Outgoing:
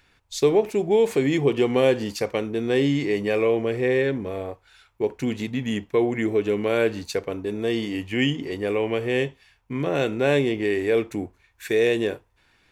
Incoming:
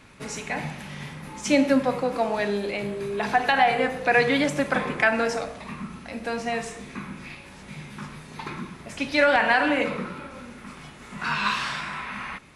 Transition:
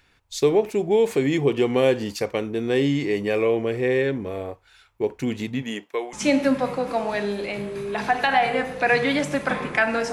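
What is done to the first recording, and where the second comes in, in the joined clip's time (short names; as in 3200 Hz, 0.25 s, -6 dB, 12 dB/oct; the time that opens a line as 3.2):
outgoing
5.61–6.13 HPF 210 Hz -> 970 Hz
6.13 switch to incoming from 1.38 s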